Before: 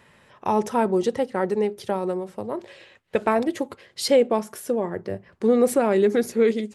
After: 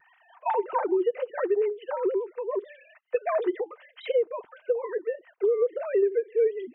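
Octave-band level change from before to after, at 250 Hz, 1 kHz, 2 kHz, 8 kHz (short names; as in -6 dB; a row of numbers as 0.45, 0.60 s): -11.0 dB, -5.5 dB, -7.0 dB, under -40 dB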